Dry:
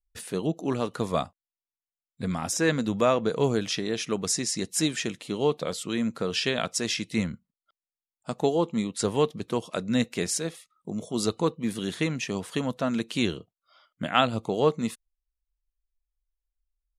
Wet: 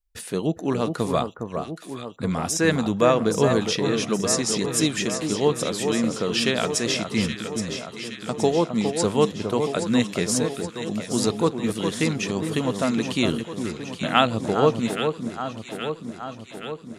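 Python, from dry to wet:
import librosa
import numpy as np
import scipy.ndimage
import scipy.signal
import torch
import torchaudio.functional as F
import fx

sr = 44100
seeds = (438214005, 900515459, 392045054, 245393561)

y = fx.echo_alternate(x, sr, ms=411, hz=1400.0, feedback_pct=78, wet_db=-6.0)
y = y * 10.0 ** (3.5 / 20.0)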